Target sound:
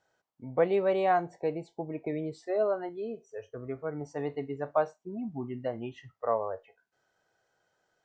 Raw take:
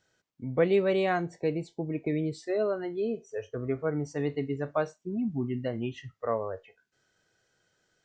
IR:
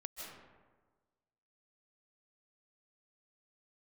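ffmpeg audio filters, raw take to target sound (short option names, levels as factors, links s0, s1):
-af "asetnsamples=n=441:p=0,asendcmd='2.89 equalizer g 5.5;4.01 equalizer g 13.5',equalizer=f=810:t=o:w=1.5:g=14,volume=0.398"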